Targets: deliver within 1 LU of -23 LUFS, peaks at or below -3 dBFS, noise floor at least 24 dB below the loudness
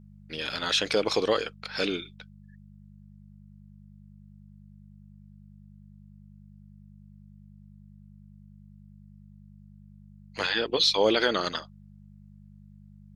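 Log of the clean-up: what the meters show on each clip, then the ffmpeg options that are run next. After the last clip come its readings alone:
hum 50 Hz; harmonics up to 200 Hz; hum level -49 dBFS; loudness -26.5 LUFS; peak -10.5 dBFS; loudness target -23.0 LUFS
-> -af "bandreject=f=50:t=h:w=4,bandreject=f=100:t=h:w=4,bandreject=f=150:t=h:w=4,bandreject=f=200:t=h:w=4"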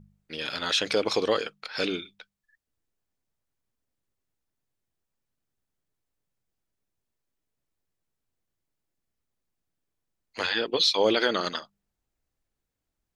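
hum none; loudness -26.0 LUFS; peak -10.5 dBFS; loudness target -23.0 LUFS
-> -af "volume=3dB"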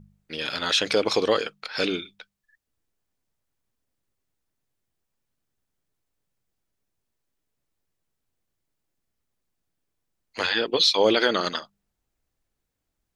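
loudness -23.0 LUFS; peak -7.5 dBFS; noise floor -81 dBFS

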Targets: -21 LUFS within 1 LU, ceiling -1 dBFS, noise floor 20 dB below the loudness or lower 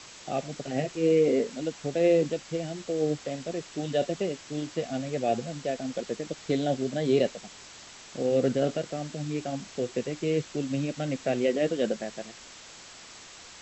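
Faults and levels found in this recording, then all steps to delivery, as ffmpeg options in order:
noise floor -48 dBFS; noise floor target -49 dBFS; loudness -29.0 LUFS; peak -12.5 dBFS; loudness target -21.0 LUFS
-> -af "afftdn=nr=6:nf=-48"
-af "volume=8dB"

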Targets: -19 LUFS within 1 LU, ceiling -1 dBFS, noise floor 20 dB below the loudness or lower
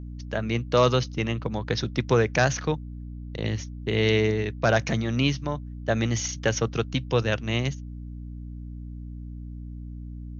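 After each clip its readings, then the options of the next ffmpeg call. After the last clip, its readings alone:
hum 60 Hz; harmonics up to 300 Hz; hum level -35 dBFS; loudness -25.5 LUFS; peak -7.5 dBFS; loudness target -19.0 LUFS
-> -af "bandreject=f=60:t=h:w=6,bandreject=f=120:t=h:w=6,bandreject=f=180:t=h:w=6,bandreject=f=240:t=h:w=6,bandreject=f=300:t=h:w=6"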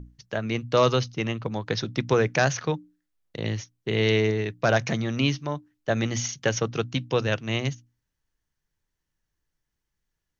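hum none; loudness -26.0 LUFS; peak -8.5 dBFS; loudness target -19.0 LUFS
-> -af "volume=7dB"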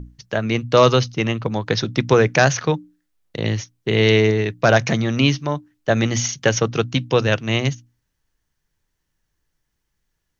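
loudness -19.0 LUFS; peak -1.5 dBFS; noise floor -75 dBFS

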